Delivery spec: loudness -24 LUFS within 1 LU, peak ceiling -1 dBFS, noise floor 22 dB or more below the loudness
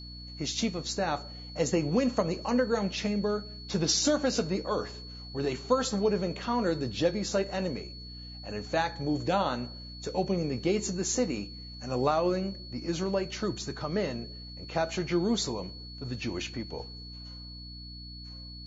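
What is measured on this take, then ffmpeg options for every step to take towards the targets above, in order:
hum 60 Hz; highest harmonic 300 Hz; hum level -43 dBFS; steady tone 4.4 kHz; tone level -45 dBFS; loudness -30.5 LUFS; peak level -11.5 dBFS; loudness target -24.0 LUFS
-> -af "bandreject=f=60:t=h:w=4,bandreject=f=120:t=h:w=4,bandreject=f=180:t=h:w=4,bandreject=f=240:t=h:w=4,bandreject=f=300:t=h:w=4"
-af "bandreject=f=4400:w=30"
-af "volume=2.11"

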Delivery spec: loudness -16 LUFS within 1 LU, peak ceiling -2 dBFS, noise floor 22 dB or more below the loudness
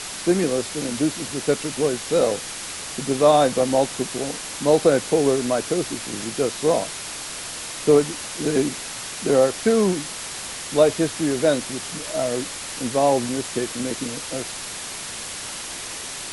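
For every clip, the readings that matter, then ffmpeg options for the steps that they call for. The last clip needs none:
noise floor -33 dBFS; noise floor target -45 dBFS; loudness -22.5 LUFS; peak level -4.0 dBFS; loudness target -16.0 LUFS
-> -af "afftdn=nr=12:nf=-33"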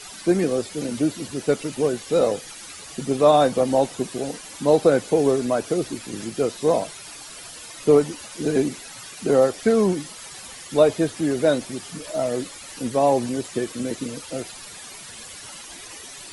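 noise floor -40 dBFS; noise floor target -45 dBFS
-> -af "afftdn=nr=6:nf=-40"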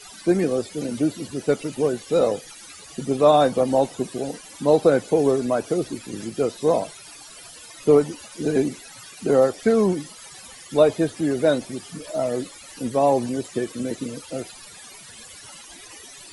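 noise floor -43 dBFS; noise floor target -45 dBFS
-> -af "afftdn=nr=6:nf=-43"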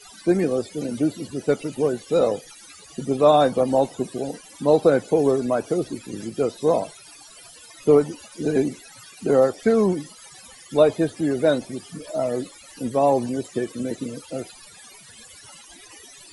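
noise floor -47 dBFS; loudness -22.5 LUFS; peak level -4.5 dBFS; loudness target -16.0 LUFS
-> -af "volume=2.11,alimiter=limit=0.794:level=0:latency=1"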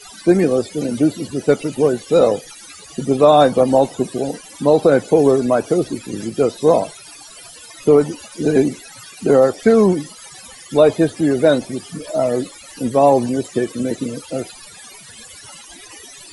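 loudness -16.5 LUFS; peak level -2.0 dBFS; noise floor -40 dBFS

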